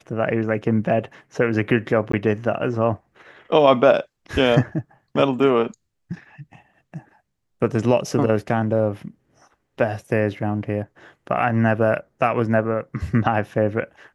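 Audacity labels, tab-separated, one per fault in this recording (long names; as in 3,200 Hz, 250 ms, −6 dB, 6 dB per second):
2.120000	2.130000	drop-out 14 ms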